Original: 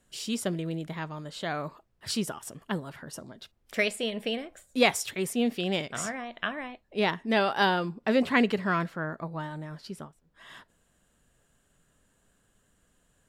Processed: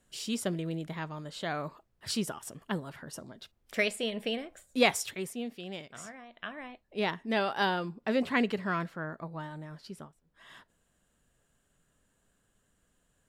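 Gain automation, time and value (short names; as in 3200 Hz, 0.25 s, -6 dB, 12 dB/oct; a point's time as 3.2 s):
5.03 s -2 dB
5.48 s -12 dB
6.28 s -12 dB
6.71 s -4.5 dB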